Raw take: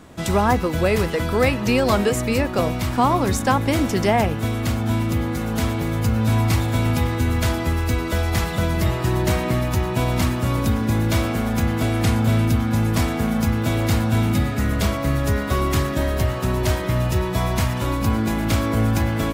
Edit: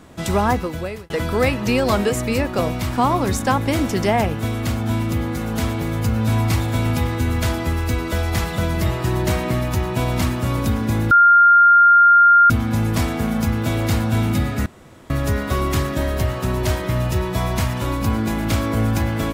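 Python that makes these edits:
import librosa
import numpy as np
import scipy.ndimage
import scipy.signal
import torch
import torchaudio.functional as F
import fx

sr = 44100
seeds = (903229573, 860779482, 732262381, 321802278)

y = fx.edit(x, sr, fx.fade_out_span(start_s=0.47, length_s=0.63),
    fx.bleep(start_s=11.11, length_s=1.39, hz=1400.0, db=-7.5),
    fx.room_tone_fill(start_s=14.66, length_s=0.44), tone=tone)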